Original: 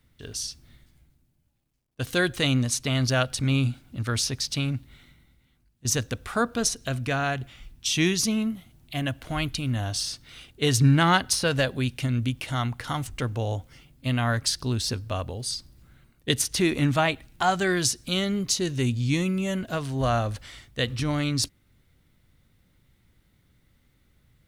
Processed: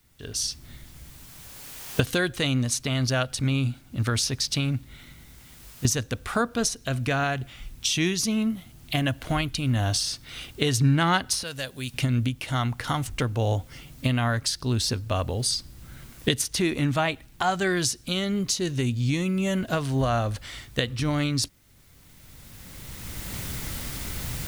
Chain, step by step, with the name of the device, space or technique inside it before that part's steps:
0:11.43–0:11.94: first-order pre-emphasis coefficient 0.8
cheap recorder with automatic gain (white noise bed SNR 38 dB; camcorder AGC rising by 15 dB per second)
level −2 dB

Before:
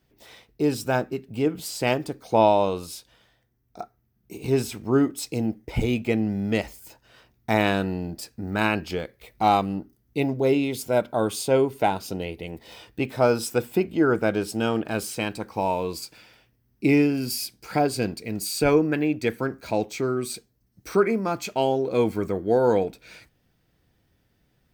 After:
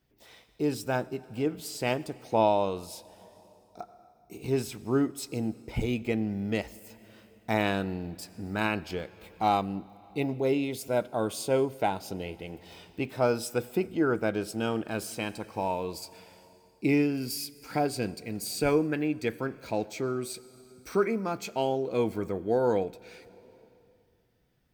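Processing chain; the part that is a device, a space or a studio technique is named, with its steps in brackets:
compressed reverb return (on a send at −11 dB: convolution reverb RT60 2.1 s, pre-delay 78 ms + downward compressor 4 to 1, threshold −33 dBFS, peak gain reduction 16.5 dB)
on the sum: level −5.5 dB

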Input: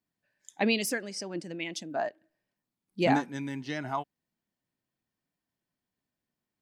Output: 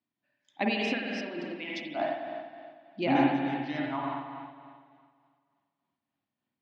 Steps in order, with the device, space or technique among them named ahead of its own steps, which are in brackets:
combo amplifier with spring reverb and tremolo (spring reverb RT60 2 s, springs 46/51 ms, chirp 40 ms, DRR −2 dB; amplitude tremolo 3.4 Hz, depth 38%; loudspeaker in its box 100–4,200 Hz, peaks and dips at 180 Hz −8 dB, 270 Hz +5 dB, 450 Hz −9 dB, 1,600 Hz −4 dB)

